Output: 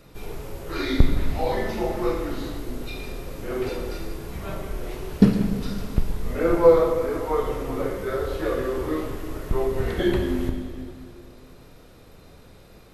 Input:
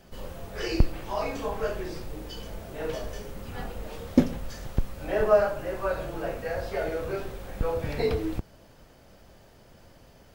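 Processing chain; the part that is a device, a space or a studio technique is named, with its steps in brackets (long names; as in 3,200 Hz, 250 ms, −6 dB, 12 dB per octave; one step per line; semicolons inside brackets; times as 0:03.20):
slowed and reverbed (speed change −20%; convolution reverb RT60 2.3 s, pre-delay 12 ms, DRR 5 dB)
level +3.5 dB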